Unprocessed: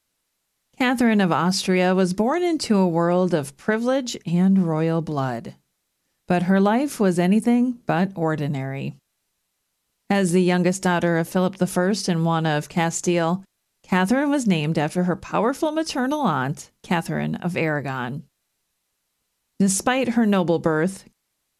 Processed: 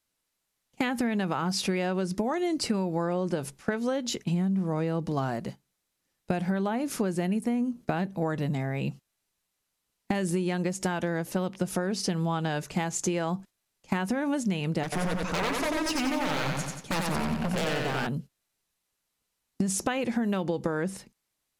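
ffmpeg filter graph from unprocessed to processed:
-filter_complex "[0:a]asettb=1/sr,asplit=3[a][b][c];[a]atrim=end=14.834[d];[b]atrim=start=14.83:end=18.07,asetpts=PTS-STARTPTS,afade=t=in:d=0.004:c=qsin,afade=t=out:st=3.236:d=0.004:c=qsin,aeval=exprs='0.0841*(abs(mod(val(0)/0.0841+3,4)-2)-1)':c=same,aecho=1:1:91|182|273|364|455|546|637:0.708|0.361|0.184|0.0939|0.0479|0.0244|0.0125,atrim=end_sample=142884[e];[c]atrim=start=18.066[f];[d][e]acrossfade=d=0.004:c1=hsin:c2=qsin[g];[g][f]acrossfade=d=0.004:c1=qsin:c2=hsin,agate=range=-6dB:threshold=-39dB:ratio=16:detection=peak,acompressor=threshold=-25dB:ratio=6"

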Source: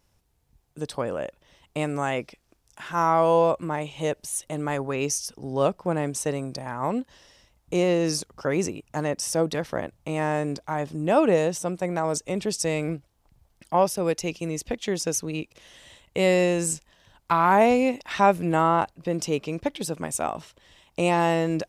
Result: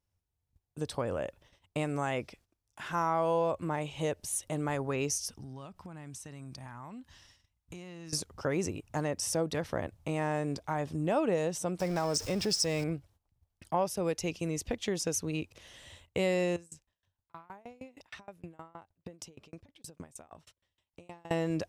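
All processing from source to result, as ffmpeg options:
-filter_complex "[0:a]asettb=1/sr,asplit=3[a][b][c];[a]atrim=end=5.324[d];[b]atrim=start=5.32:end=8.13,asetpts=PTS-STARTPTS,afade=t=in:d=0.004:c=qsin,afade=t=out:st=2.806:d=0.004:c=qsin,equalizer=f=490:w=1.4:g=-13,acompressor=threshold=-39dB:ratio=10:attack=3.2:release=140:knee=1:detection=peak[e];[c]atrim=start=8.126[f];[d][e]acrossfade=d=0.004:c1=hsin:c2=qsin[g];[g][f]acrossfade=d=0.004:c1=qsin:c2=hsin,asettb=1/sr,asplit=3[h][i][j];[h]atrim=end=11.804[k];[i]atrim=start=11.8:end=12.84,asetpts=PTS-STARTPTS,afade=t=in:d=0.004:c=qsin,afade=t=out:st=1.036:d=0.004:c=qsin,aeval=exprs='val(0)+0.5*0.0211*sgn(val(0))':c=same,equalizer=f=5.2k:t=o:w=0.24:g=14[l];[j]atrim=start=12.836[m];[k][l]acrossfade=d=0.004:c1=hsin:c2=qsin[n];[n][m]acrossfade=d=0.004:c1=qsin:c2=hsin,asettb=1/sr,asplit=3[o][p][q];[o]atrim=end=16.564[r];[p]atrim=start=16.56:end=21.31,asetpts=PTS-STARTPTS,afade=t=in:d=0.004:c=qsin,afade=t=out:st=4.746:d=0.004:c=qsin,acompressor=threshold=-34dB:ratio=16:attack=3.2:release=140:knee=1:detection=peak,aeval=exprs='val(0)*pow(10,-26*if(lt(mod(6.4*n/s,1),2*abs(6.4)/1000),1-mod(6.4*n/s,1)/(2*abs(6.4)/1000),(mod(6.4*n/s,1)-2*abs(6.4)/1000)/(1-2*abs(6.4)/1000))/20)':c=same[s];[q]atrim=start=21.306[t];[r][s]acrossfade=d=0.004:c1=hsin:c2=qsin[u];[u][t]acrossfade=d=0.004:c1=qsin:c2=hsin,agate=range=-16dB:threshold=-55dB:ratio=16:detection=peak,equalizer=f=89:t=o:w=0.62:g=10.5,acompressor=threshold=-27dB:ratio=2,volume=-3dB"

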